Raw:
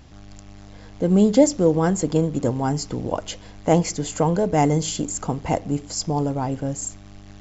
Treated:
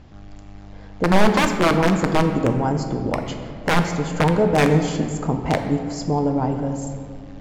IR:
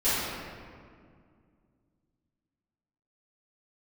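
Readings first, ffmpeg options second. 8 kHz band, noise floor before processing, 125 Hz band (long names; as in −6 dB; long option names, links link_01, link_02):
can't be measured, −43 dBFS, +2.0 dB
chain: -filter_complex "[0:a]aeval=exprs='(mod(3.55*val(0)+1,2)-1)/3.55':channel_layout=same,aemphasis=mode=reproduction:type=75fm,asplit=2[link_01][link_02];[1:a]atrim=start_sample=2205,adelay=5[link_03];[link_02][link_03]afir=irnorm=-1:irlink=0,volume=-19.5dB[link_04];[link_01][link_04]amix=inputs=2:normalize=0,volume=1dB"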